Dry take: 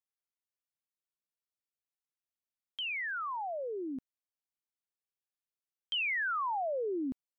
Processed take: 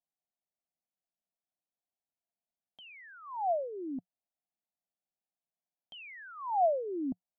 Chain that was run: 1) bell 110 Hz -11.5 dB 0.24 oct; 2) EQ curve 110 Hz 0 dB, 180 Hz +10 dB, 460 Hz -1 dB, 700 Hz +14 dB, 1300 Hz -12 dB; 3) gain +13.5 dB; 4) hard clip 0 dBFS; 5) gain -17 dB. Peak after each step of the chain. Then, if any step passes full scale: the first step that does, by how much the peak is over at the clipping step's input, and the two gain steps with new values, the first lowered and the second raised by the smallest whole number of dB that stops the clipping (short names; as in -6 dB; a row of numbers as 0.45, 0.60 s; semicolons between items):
-29.0, -16.5, -3.0, -3.0, -20.0 dBFS; no overload